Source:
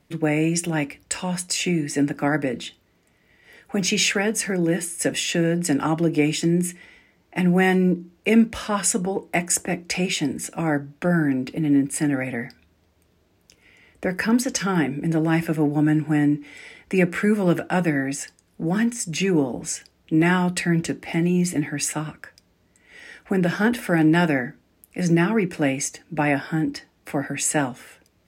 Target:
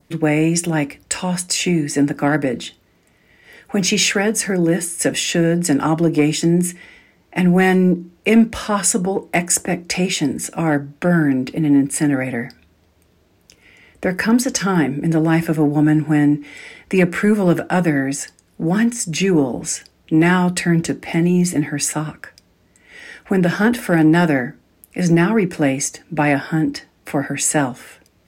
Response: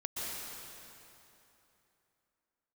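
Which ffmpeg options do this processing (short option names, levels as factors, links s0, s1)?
-af "adynamicequalizer=threshold=0.00708:dfrequency=2600:dqfactor=1.6:tfrequency=2600:tqfactor=1.6:attack=5:release=100:ratio=0.375:range=2.5:mode=cutabove:tftype=bell,acontrast=65,volume=0.891"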